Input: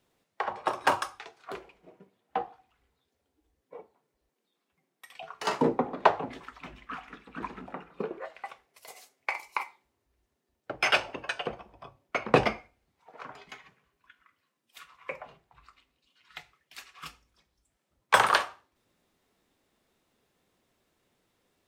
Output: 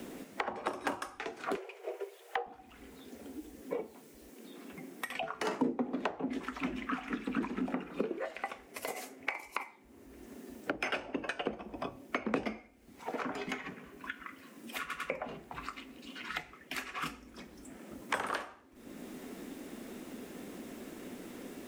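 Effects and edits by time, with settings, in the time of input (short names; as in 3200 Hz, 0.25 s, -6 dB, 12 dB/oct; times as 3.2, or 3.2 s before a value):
1.56–2.46 steep high-pass 380 Hz 96 dB/oct
14.8 stutter in place 0.10 s, 3 plays
whole clip: compressor 2.5:1, threshold -49 dBFS; graphic EQ 125/250/1000/4000 Hz -8/+12/-5/-6 dB; three-band squash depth 70%; gain +12 dB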